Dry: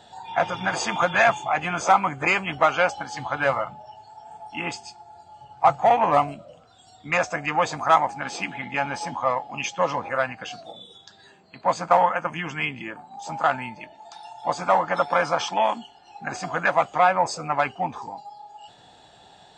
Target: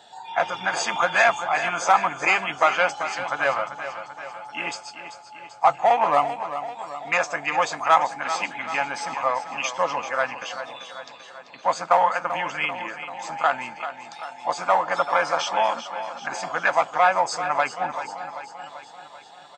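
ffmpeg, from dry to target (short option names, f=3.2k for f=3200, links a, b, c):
-af "highpass=f=570:p=1,aecho=1:1:389|778|1167|1556|1945|2334|2723:0.282|0.166|0.0981|0.0579|0.0342|0.0201|0.0119,volume=1.5dB"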